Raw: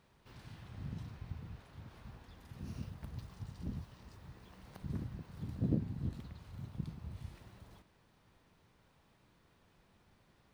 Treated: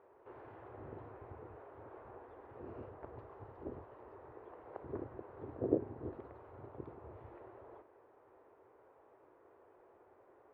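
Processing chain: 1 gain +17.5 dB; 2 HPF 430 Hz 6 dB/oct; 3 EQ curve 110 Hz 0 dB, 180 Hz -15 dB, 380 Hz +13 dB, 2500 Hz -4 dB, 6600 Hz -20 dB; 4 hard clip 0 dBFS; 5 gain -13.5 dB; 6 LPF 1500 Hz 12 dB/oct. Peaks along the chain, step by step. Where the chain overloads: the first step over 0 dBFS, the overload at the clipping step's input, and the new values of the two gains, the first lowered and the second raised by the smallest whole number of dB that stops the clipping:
-2.0, -8.5, -3.0, -3.0, -16.5, -16.5 dBFS; no overload

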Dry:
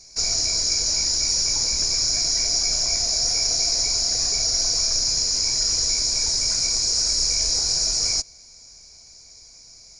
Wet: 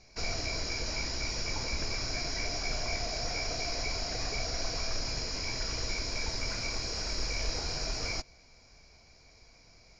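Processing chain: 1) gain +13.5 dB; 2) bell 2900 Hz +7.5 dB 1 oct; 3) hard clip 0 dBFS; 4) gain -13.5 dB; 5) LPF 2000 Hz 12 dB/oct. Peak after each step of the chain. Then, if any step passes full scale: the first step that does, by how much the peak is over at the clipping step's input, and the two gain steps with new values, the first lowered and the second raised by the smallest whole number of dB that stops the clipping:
+6.0, +7.0, 0.0, -13.5, -19.5 dBFS; step 1, 7.0 dB; step 1 +6.5 dB, step 4 -6.5 dB

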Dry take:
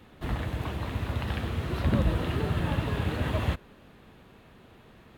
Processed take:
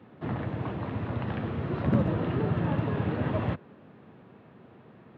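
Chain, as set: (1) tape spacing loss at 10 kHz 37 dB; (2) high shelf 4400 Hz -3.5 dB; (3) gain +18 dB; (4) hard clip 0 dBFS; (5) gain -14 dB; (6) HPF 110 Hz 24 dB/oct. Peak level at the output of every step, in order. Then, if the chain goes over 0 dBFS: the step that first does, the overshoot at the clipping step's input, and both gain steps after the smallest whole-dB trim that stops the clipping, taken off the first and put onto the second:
-13.5, -13.5, +4.5, 0.0, -14.0, -11.5 dBFS; step 3, 4.5 dB; step 3 +13 dB, step 5 -9 dB

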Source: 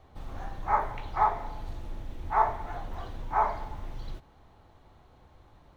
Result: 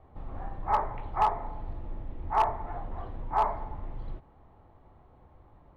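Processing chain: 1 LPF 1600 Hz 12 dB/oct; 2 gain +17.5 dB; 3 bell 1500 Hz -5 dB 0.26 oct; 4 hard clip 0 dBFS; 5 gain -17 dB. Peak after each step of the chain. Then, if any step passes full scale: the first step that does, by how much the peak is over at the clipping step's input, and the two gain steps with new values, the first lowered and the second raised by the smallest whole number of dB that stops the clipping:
-10.5, +7.0, +6.5, 0.0, -17.0 dBFS; step 2, 6.5 dB; step 2 +10.5 dB, step 5 -10 dB

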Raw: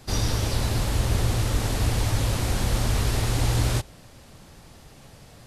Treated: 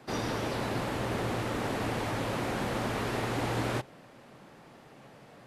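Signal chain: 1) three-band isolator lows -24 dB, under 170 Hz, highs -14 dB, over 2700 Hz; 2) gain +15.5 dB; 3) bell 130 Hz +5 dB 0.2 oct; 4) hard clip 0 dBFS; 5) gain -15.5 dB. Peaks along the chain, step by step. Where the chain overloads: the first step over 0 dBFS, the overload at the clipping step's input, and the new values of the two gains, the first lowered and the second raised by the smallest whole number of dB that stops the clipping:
-18.5, -3.0, -3.0, -3.0, -18.5 dBFS; no overload

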